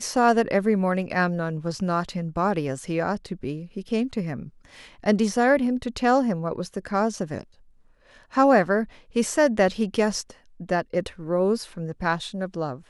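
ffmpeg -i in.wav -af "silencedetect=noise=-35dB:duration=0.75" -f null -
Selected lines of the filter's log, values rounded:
silence_start: 7.43
silence_end: 8.34 | silence_duration: 0.91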